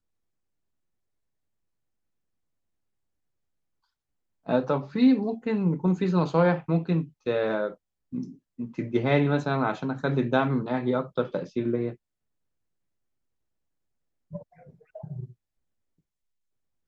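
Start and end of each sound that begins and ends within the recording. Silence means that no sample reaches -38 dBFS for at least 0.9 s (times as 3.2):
4.46–11.93
14.33–15.25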